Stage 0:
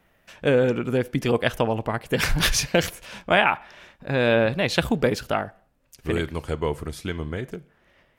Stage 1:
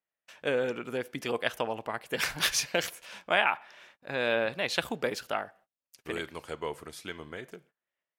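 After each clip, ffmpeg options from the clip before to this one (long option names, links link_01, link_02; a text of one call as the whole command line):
ffmpeg -i in.wav -af "highpass=frequency=620:poles=1,agate=range=-24dB:threshold=-53dB:ratio=16:detection=peak,volume=-5dB" out.wav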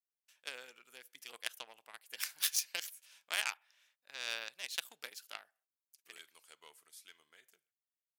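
ffmpeg -i in.wav -af "aeval=exprs='0.376*(cos(1*acos(clip(val(0)/0.376,-1,1)))-cos(1*PI/2))+0.0211*(cos(3*acos(clip(val(0)/0.376,-1,1)))-cos(3*PI/2))+0.0299*(cos(7*acos(clip(val(0)/0.376,-1,1)))-cos(7*PI/2))':channel_layout=same,aderivative,volume=3dB" out.wav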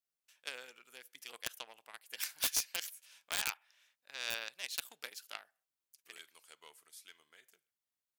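ffmpeg -i in.wav -af "aeval=exprs='(mod(11.2*val(0)+1,2)-1)/11.2':channel_layout=same,volume=1dB" out.wav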